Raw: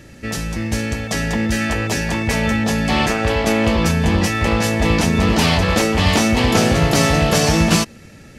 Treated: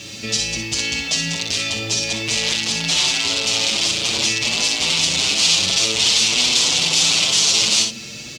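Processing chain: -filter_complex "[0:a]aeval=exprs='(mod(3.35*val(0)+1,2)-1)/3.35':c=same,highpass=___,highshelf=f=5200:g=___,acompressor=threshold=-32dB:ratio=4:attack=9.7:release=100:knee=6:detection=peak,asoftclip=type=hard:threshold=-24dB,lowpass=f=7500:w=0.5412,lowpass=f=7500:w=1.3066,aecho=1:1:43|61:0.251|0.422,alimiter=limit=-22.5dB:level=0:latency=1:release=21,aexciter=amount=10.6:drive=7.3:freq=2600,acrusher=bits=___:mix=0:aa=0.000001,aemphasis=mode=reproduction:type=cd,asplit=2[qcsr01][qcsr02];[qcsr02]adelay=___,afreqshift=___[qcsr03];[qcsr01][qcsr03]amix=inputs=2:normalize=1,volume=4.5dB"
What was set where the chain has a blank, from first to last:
94, -4.5, 6, 7, 0.53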